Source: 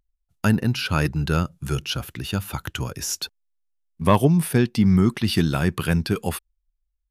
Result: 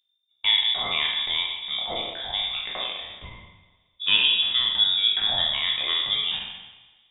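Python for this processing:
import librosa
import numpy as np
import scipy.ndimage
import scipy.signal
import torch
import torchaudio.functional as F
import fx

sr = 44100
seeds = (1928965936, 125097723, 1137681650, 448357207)

y = fx.spec_trails(x, sr, decay_s=1.07)
y = fx.freq_invert(y, sr, carrier_hz=3600)
y = fx.rev_double_slope(y, sr, seeds[0], early_s=0.61, late_s=2.4, knee_db=-21, drr_db=4.5)
y = y * librosa.db_to_amplitude(-7.5)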